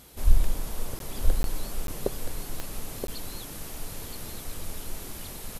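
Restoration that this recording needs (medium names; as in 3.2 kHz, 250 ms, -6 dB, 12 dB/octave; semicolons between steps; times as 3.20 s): de-click; interpolate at 0.99/1.43/1.87/3.07 s, 12 ms; inverse comb 975 ms -6 dB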